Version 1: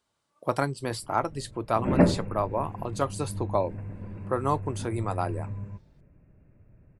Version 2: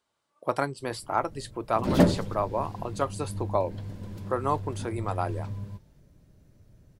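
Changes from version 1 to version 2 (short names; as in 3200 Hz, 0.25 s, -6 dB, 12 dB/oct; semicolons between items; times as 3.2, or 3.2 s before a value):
speech: add tone controls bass -6 dB, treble -3 dB; background: remove brick-wall FIR low-pass 2800 Hz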